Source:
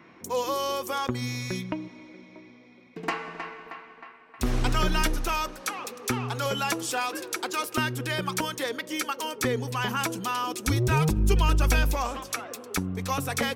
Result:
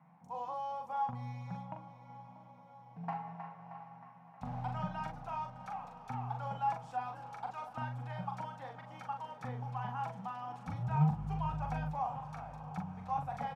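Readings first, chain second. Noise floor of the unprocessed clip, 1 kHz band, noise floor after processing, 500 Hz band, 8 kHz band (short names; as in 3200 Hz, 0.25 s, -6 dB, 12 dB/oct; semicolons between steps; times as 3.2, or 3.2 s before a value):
-52 dBFS, -6.0 dB, -57 dBFS, -17.5 dB, under -30 dB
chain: double band-pass 360 Hz, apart 2.3 oct; doubler 41 ms -5 dB; diffused feedback echo 0.685 s, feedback 63%, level -14 dB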